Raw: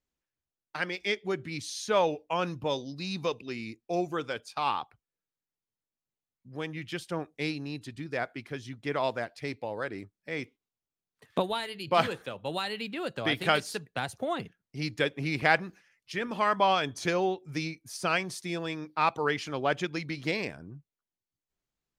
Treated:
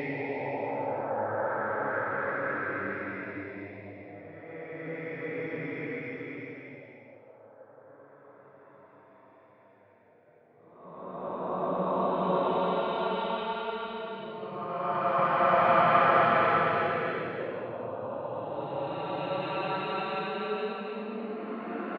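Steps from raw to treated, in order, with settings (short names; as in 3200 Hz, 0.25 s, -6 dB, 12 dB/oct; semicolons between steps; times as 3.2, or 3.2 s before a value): feedback echo 0.938 s, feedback 38%, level -22.5 dB; LFO low-pass saw up 1.9 Hz 450–2400 Hz; Paulstretch 6.4×, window 0.50 s, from 9.49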